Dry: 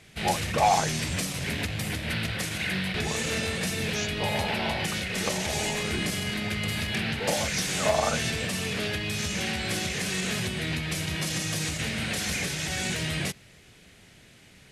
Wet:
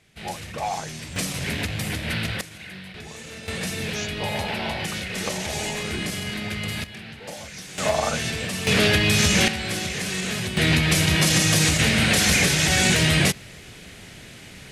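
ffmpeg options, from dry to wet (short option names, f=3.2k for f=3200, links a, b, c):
-af "asetnsamples=n=441:p=0,asendcmd='1.16 volume volume 3dB;2.41 volume volume -10dB;3.48 volume volume 0.5dB;6.84 volume volume -10dB;7.78 volume volume 1.5dB;8.67 volume volume 11.5dB;9.48 volume volume 2dB;10.57 volume volume 11dB',volume=-6.5dB"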